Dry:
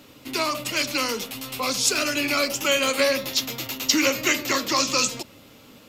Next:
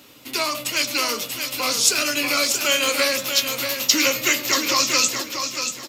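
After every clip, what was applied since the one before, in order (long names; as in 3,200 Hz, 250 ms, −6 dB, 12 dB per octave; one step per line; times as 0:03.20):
spectral tilt +1.5 dB per octave
double-tracking delay 17 ms −12 dB
repeating echo 635 ms, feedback 28%, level −7 dB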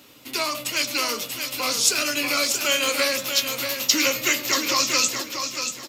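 bit-depth reduction 12 bits, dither none
level −2 dB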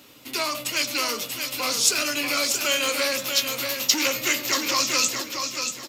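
saturating transformer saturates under 3,800 Hz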